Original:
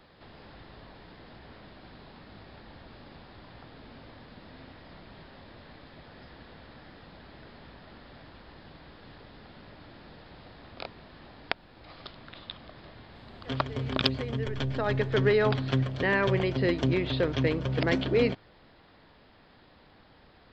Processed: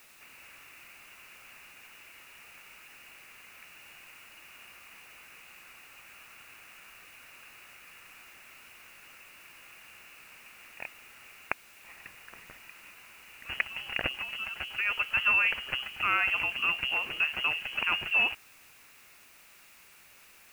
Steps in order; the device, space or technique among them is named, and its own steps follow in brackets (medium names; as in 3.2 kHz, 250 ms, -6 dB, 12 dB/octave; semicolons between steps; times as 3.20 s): scrambled radio voice (band-pass 340–2800 Hz; frequency inversion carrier 3.1 kHz; white noise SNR 22 dB)